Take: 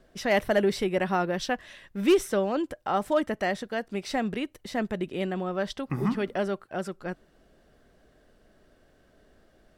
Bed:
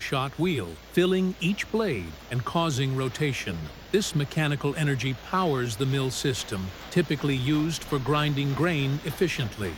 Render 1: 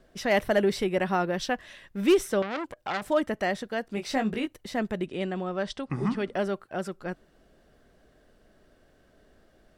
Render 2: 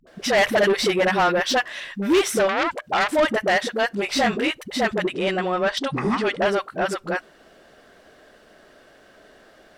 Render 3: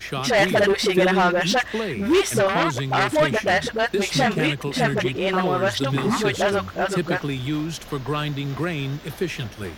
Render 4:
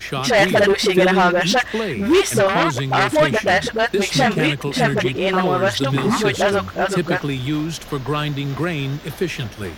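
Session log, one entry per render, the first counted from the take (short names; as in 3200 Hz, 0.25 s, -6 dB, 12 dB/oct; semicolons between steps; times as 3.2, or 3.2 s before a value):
2.42–3.02 core saturation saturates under 2500 Hz; 3.95–4.53 doubler 19 ms -5.5 dB; 5.06–6.34 elliptic low-pass 9500 Hz
dispersion highs, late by 69 ms, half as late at 370 Hz; overdrive pedal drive 21 dB, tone 5600 Hz, clips at -10 dBFS
add bed -1 dB
gain +3.5 dB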